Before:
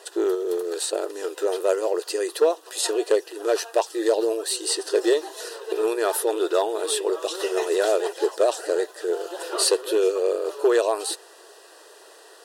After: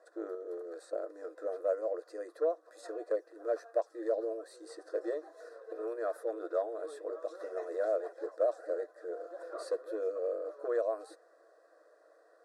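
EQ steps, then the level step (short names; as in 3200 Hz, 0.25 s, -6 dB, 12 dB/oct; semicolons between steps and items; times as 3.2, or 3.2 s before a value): band-pass 490 Hz, Q 0.79; fixed phaser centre 590 Hz, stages 8; -7.5 dB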